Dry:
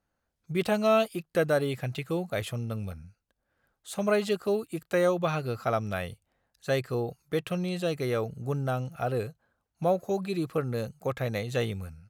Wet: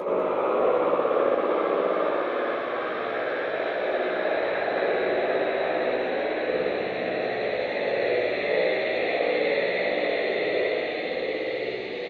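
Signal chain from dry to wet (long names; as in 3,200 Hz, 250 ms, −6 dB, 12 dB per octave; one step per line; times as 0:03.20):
elliptic band-pass filter 340–4,200 Hz, stop band 50 dB
extreme stretch with random phases 31×, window 0.25 s, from 0:11.08
on a send: echo with a time of its own for lows and highs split 1,300 Hz, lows 106 ms, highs 199 ms, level −8 dB
on the sum: random phases in short frames
double-tracking delay 16 ms −5.5 dB
spring reverb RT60 1.4 s, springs 59 ms, chirp 50 ms, DRR −5.5 dB
level that may rise only so fast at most 180 dB per second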